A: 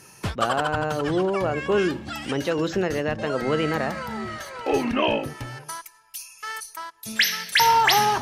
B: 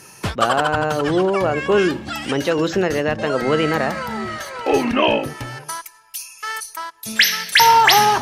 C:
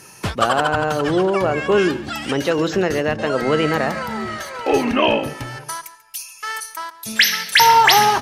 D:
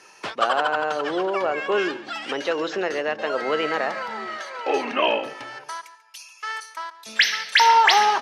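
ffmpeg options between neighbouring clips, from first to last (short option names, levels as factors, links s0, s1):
-af "lowshelf=f=170:g=-4,volume=2"
-filter_complex "[0:a]asplit=2[s0][s1];[s1]adelay=139.9,volume=0.158,highshelf=f=4000:g=-3.15[s2];[s0][s2]amix=inputs=2:normalize=0"
-af "highpass=440,lowpass=5000,volume=0.708"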